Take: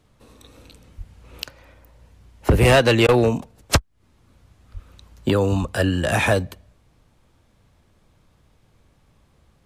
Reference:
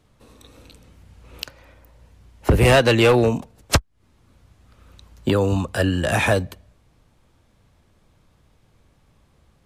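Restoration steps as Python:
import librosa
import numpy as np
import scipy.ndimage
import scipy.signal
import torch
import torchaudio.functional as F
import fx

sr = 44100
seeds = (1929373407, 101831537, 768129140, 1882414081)

y = fx.fix_deplosive(x, sr, at_s=(0.97, 3.05, 4.73, 5.6))
y = fx.fix_interpolate(y, sr, at_s=(3.07,), length_ms=14.0)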